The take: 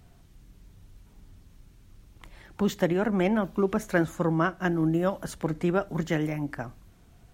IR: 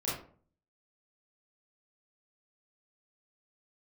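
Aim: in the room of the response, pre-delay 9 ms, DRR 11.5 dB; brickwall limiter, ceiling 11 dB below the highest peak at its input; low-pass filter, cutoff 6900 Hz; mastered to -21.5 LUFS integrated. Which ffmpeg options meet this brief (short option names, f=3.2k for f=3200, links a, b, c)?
-filter_complex "[0:a]lowpass=6.9k,alimiter=limit=-21dB:level=0:latency=1,asplit=2[a][b];[1:a]atrim=start_sample=2205,adelay=9[c];[b][c]afir=irnorm=-1:irlink=0,volume=-17dB[d];[a][d]amix=inputs=2:normalize=0,volume=9.5dB"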